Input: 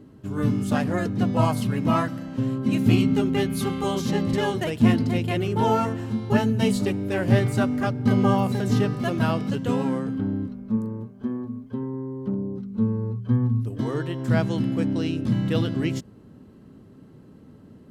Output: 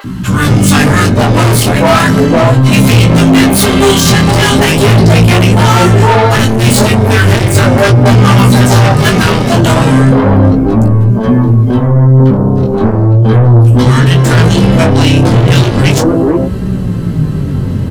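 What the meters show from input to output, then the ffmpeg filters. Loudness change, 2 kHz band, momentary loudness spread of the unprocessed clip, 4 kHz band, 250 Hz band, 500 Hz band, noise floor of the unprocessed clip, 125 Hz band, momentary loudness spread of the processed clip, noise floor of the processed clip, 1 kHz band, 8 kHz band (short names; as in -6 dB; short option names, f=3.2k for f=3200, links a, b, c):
+17.0 dB, +20.5 dB, 10 LU, +22.0 dB, +14.0 dB, +16.5 dB, -49 dBFS, +19.5 dB, 5 LU, -14 dBFS, +17.5 dB, +25.5 dB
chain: -filter_complex "[0:a]adynamicequalizer=threshold=0.00158:dfrequency=9100:dqfactor=1.2:tfrequency=9100:tqfactor=1.2:attack=5:release=100:ratio=0.375:range=2.5:mode=boostabove:tftype=bell,acrossover=split=270|930[a][b][c];[a]adelay=40[d];[b]adelay=460[e];[d][e][c]amix=inputs=3:normalize=0,asplit=2[f][g];[g]acompressor=threshold=-34dB:ratio=6,volume=-1dB[h];[f][h]amix=inputs=2:normalize=0,asubboost=boost=3:cutoff=150,flanger=delay=4.9:depth=8.3:regen=58:speed=0.18:shape=triangular,asoftclip=type=tanh:threshold=-25.5dB,apsyclip=36dB,flanger=delay=16:depth=7.6:speed=0.36,acompressor=mode=upward:threshold=-27dB:ratio=2.5,volume=-1.5dB"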